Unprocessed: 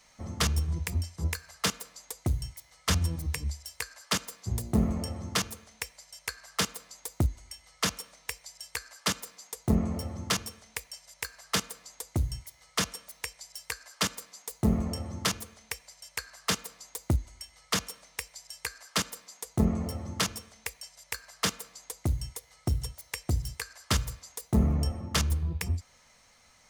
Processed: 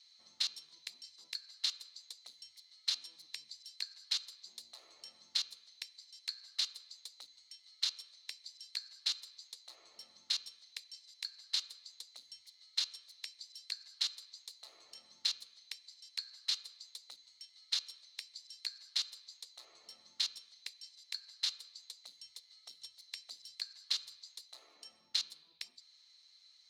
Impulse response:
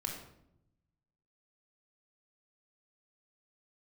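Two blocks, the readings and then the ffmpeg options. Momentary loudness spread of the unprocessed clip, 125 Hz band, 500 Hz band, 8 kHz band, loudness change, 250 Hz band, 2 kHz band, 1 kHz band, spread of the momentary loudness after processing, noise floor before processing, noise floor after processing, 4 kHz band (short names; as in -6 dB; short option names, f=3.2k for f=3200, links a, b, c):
13 LU, under -40 dB, under -30 dB, -12.5 dB, -7.5 dB, under -40 dB, -15.0 dB, -25.0 dB, 17 LU, -61 dBFS, -66 dBFS, -1.5 dB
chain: -af "afftfilt=real='re*lt(hypot(re,im),0.112)':imag='im*lt(hypot(re,im),0.112)':win_size=1024:overlap=0.75,bandpass=f=4.1k:t=q:w=10:csg=0,volume=9dB"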